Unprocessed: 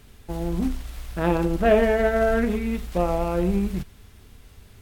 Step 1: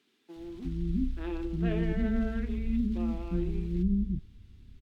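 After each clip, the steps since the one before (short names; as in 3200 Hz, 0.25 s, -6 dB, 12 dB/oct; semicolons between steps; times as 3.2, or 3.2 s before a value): EQ curve 330 Hz 0 dB, 540 Hz -21 dB, 3600 Hz -8 dB, 11000 Hz -23 dB; bands offset in time highs, lows 0.36 s, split 340 Hz; gain -3 dB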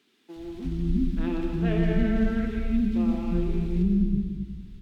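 reverb RT60 1.6 s, pre-delay 70 ms, DRR 3 dB; gain +4.5 dB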